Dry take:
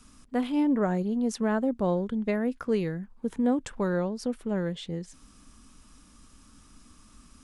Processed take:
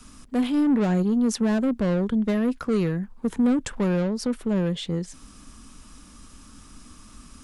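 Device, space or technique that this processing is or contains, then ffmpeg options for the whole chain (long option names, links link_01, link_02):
one-band saturation: -filter_complex "[0:a]acrossover=split=260|4200[link_01][link_02][link_03];[link_02]asoftclip=type=tanh:threshold=-33dB[link_04];[link_01][link_04][link_03]amix=inputs=3:normalize=0,volume=7.5dB"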